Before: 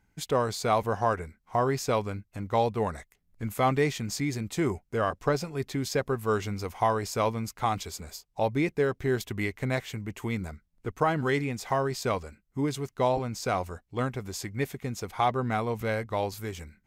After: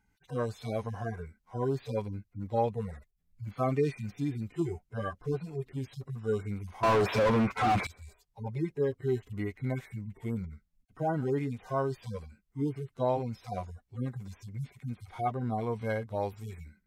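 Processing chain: harmonic-percussive separation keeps harmonic; 6.83–7.87 s: overdrive pedal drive 37 dB, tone 1.4 kHz, clips at -15 dBFS; trim -2 dB

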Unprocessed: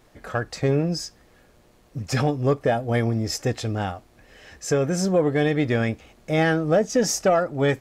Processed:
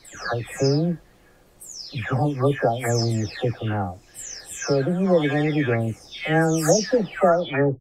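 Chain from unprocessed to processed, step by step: delay that grows with frequency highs early, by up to 481 ms; trim +2 dB

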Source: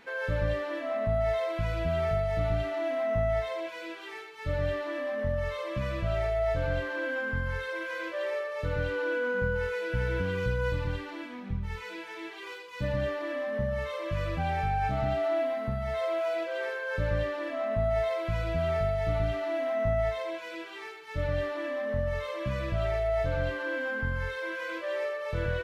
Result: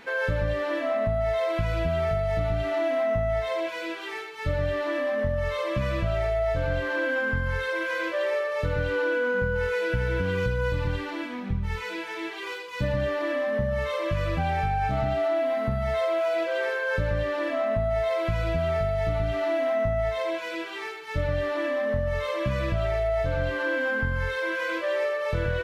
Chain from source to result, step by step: compression, threshold -29 dBFS, peak gain reduction 6.5 dB; trim +7 dB

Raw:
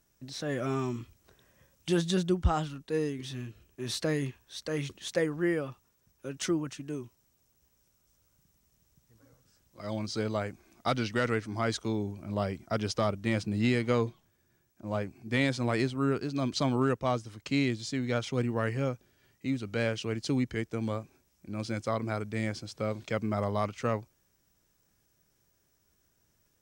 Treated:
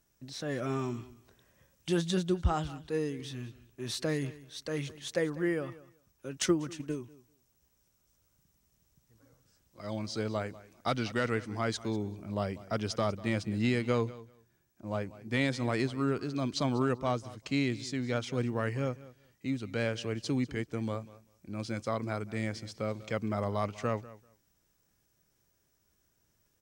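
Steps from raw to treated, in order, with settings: feedback delay 194 ms, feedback 16%, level -18.5 dB; 6.32–7.00 s: transient shaper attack +7 dB, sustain +1 dB; trim -2 dB

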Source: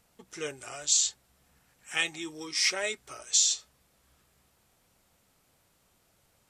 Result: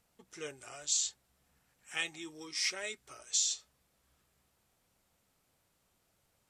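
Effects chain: 2.66–3.50 s: dynamic bell 740 Hz, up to -4 dB, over -45 dBFS, Q 0.92; trim -7 dB

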